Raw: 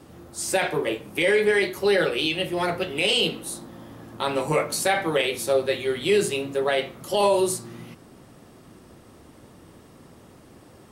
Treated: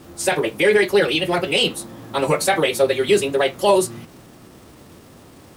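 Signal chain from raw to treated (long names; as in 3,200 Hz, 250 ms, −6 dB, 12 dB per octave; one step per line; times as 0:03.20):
surface crackle 570 per second −44 dBFS
phase-vocoder stretch with locked phases 0.51×
level +6 dB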